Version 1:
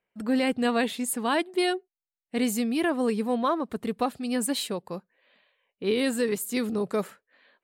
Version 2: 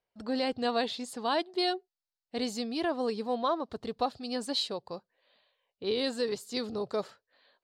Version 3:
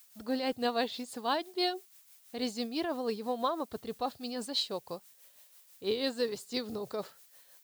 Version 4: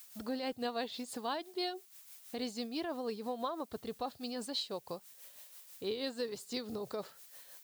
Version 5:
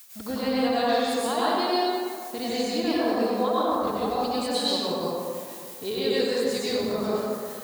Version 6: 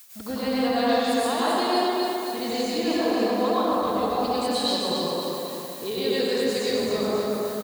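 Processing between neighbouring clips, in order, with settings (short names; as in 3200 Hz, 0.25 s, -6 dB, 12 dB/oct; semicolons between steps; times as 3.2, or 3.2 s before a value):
EQ curve 120 Hz 0 dB, 180 Hz -11 dB, 730 Hz -1 dB, 2300 Hz -10 dB, 4600 Hz +5 dB, 9600 Hz -17 dB, 14000 Hz -23 dB
added noise blue -57 dBFS; tremolo 6.1 Hz, depth 50%
compressor 2:1, threshold -47 dBFS, peak gain reduction 12 dB; gain +4.5 dB
plate-style reverb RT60 2.3 s, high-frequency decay 0.45×, pre-delay 85 ms, DRR -9 dB; gain +5 dB
feedback echo 0.267 s, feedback 51%, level -5 dB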